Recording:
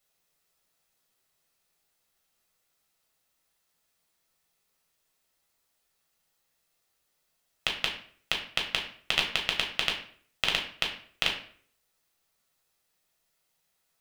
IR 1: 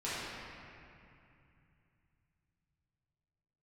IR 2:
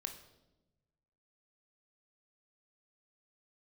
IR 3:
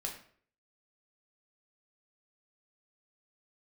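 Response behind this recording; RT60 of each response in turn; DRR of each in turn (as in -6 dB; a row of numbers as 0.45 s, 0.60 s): 3; 2.6 s, 1.0 s, 0.55 s; -12.0 dB, 5.0 dB, 0.0 dB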